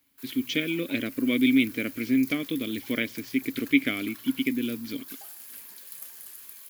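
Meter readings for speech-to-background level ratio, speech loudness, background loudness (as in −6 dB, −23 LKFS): 15.0 dB, −27.0 LKFS, −42.0 LKFS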